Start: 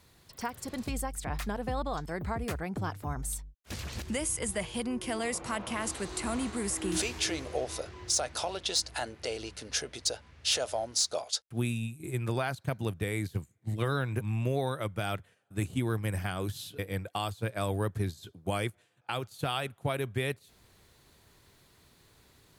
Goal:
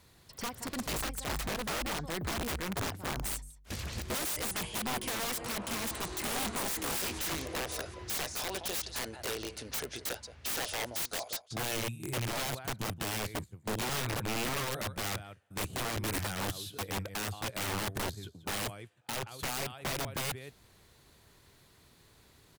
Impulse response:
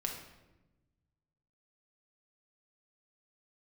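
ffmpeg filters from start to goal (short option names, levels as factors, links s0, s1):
-filter_complex "[0:a]asplit=2[s0][s1];[s1]adelay=174.9,volume=0.178,highshelf=f=4000:g=-3.94[s2];[s0][s2]amix=inputs=2:normalize=0,aeval=exprs='(mod(28.2*val(0)+1,2)-1)/28.2':c=same"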